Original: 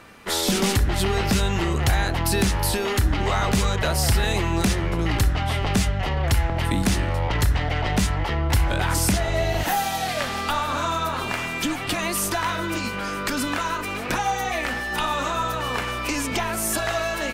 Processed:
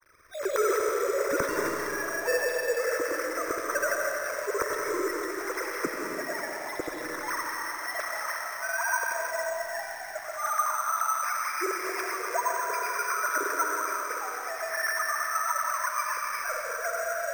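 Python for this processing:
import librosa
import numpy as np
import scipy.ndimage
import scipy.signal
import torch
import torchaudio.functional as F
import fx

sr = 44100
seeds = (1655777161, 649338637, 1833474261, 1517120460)

y = fx.sine_speech(x, sr)
y = fx.dynamic_eq(y, sr, hz=1000.0, q=1.7, threshold_db=-33.0, ratio=4.0, max_db=3)
y = fx.rider(y, sr, range_db=4, speed_s=0.5)
y = fx.dmg_crackle(y, sr, seeds[0], per_s=120.0, level_db=-28.0)
y = fx.granulator(y, sr, seeds[1], grain_ms=100.0, per_s=20.0, spray_ms=100.0, spread_st=0)
y = fx.rotary_switch(y, sr, hz=1.2, then_hz=8.0, switch_at_s=10.7)
y = fx.fixed_phaser(y, sr, hz=790.0, stages=6)
y = fx.rev_freeverb(y, sr, rt60_s=3.0, hf_ratio=0.85, predelay_ms=90, drr_db=0.5)
y = np.repeat(scipy.signal.resample_poly(y, 1, 6), 6)[:len(y)]
y = fx.echo_crushed(y, sr, ms=87, feedback_pct=55, bits=7, wet_db=-11.0)
y = y * librosa.db_to_amplitude(-3.5)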